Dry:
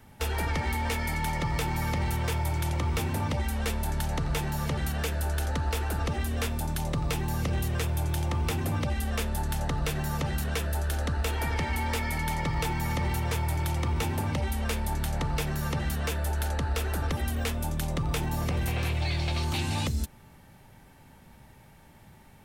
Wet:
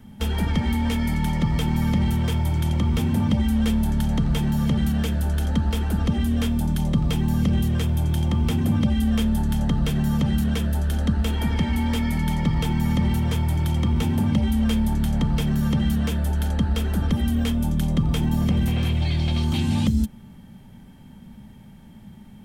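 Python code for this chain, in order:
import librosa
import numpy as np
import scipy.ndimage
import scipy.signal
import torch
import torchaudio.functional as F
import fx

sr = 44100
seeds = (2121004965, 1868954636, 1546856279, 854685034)

y = fx.low_shelf(x, sr, hz=130.0, db=9.0)
y = fx.small_body(y, sr, hz=(210.0, 3200.0), ring_ms=55, db=17)
y = F.gain(torch.from_numpy(y), -1.5).numpy()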